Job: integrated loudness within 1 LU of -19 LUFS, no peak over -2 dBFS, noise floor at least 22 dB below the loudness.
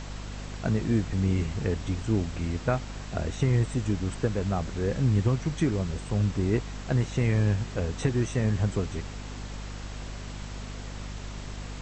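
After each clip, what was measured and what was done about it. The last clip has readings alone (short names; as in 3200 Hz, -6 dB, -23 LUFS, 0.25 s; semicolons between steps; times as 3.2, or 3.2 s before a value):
hum 50 Hz; harmonics up to 250 Hz; hum level -35 dBFS; noise floor -39 dBFS; noise floor target -50 dBFS; loudness -28.0 LUFS; peak -11.5 dBFS; loudness target -19.0 LUFS
-> de-hum 50 Hz, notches 5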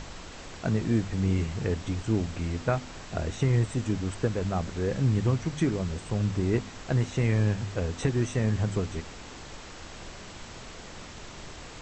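hum none; noise floor -44 dBFS; noise floor target -51 dBFS
-> noise print and reduce 7 dB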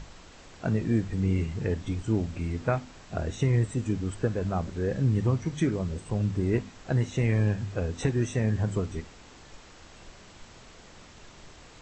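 noise floor -51 dBFS; loudness -28.5 LUFS; peak -12.5 dBFS; loudness target -19.0 LUFS
-> gain +9.5 dB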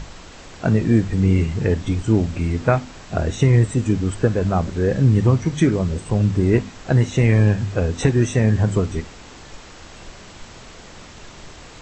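loudness -19.0 LUFS; peak -3.0 dBFS; noise floor -41 dBFS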